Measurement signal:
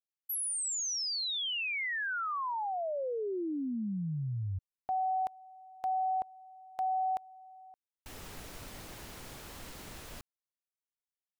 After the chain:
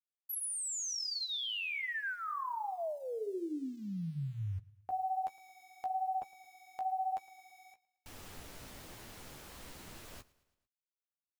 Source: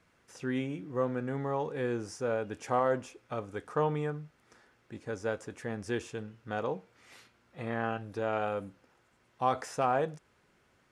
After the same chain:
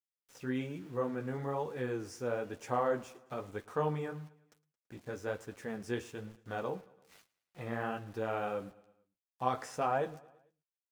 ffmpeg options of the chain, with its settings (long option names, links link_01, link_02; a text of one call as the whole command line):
ffmpeg -i in.wav -af "aeval=exprs='val(0)*gte(abs(val(0)),0.00266)':channel_layout=same,flanger=delay=8.2:depth=8.8:regen=-23:speed=1.1:shape=triangular,aecho=1:1:111|222|333|444:0.0794|0.0437|0.024|0.0132" out.wav